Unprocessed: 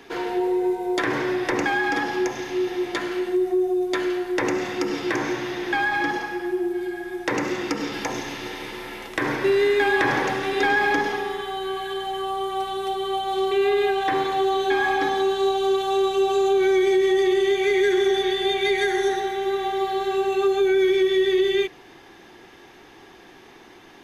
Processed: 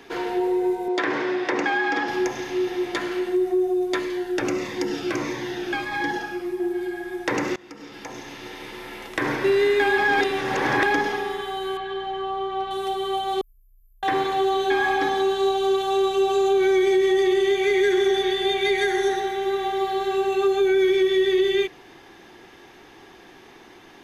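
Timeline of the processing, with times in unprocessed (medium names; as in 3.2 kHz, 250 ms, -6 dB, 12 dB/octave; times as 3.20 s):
0.88–2.08 s: band-pass 220–5500 Hz
3.99–6.60 s: Shepard-style phaser falling 1.6 Hz
7.56–9.27 s: fade in, from -22 dB
9.98–10.86 s: reverse
11.77–12.71 s: distance through air 190 m
13.41–14.03 s: inverse Chebyshev band-stop 270–4400 Hz, stop band 80 dB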